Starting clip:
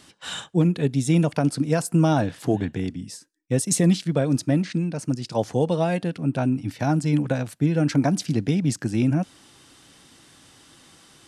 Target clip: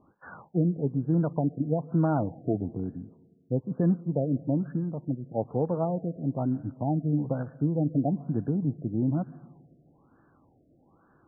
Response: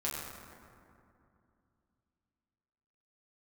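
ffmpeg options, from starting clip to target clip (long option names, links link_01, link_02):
-filter_complex "[0:a]lowpass=2300,asplit=2[link_01][link_02];[1:a]atrim=start_sample=2205,asetrate=88200,aresample=44100,adelay=128[link_03];[link_02][link_03]afir=irnorm=-1:irlink=0,volume=-20.5dB[link_04];[link_01][link_04]amix=inputs=2:normalize=0,afftfilt=real='re*lt(b*sr/1024,710*pow(1800/710,0.5+0.5*sin(2*PI*1.1*pts/sr)))':imag='im*lt(b*sr/1024,710*pow(1800/710,0.5+0.5*sin(2*PI*1.1*pts/sr)))':win_size=1024:overlap=0.75,volume=-5.5dB"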